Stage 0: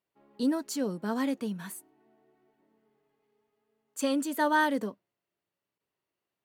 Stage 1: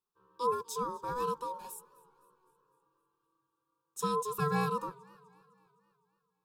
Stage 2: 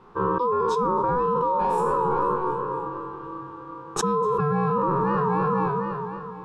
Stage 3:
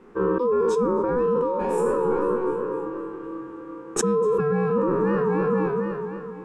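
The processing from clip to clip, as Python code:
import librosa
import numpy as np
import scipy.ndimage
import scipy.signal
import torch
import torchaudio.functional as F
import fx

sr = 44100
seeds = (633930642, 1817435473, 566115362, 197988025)

y1 = x * np.sin(2.0 * np.pi * 740.0 * np.arange(len(x)) / sr)
y1 = fx.fixed_phaser(y1, sr, hz=410.0, stages=8)
y1 = fx.echo_warbled(y1, sr, ms=255, feedback_pct=55, rate_hz=2.8, cents=135, wet_db=-23.5)
y2 = fx.spec_trails(y1, sr, decay_s=0.47)
y2 = scipy.signal.sosfilt(scipy.signal.butter(2, 1200.0, 'lowpass', fs=sr, output='sos'), y2)
y2 = fx.env_flatten(y2, sr, amount_pct=100)
y2 = F.gain(torch.from_numpy(y2), 4.5).numpy()
y3 = fx.graphic_eq(y2, sr, hz=(125, 250, 500, 1000, 2000, 4000, 8000), db=(-11, 10, 4, -10, 7, -8, 7))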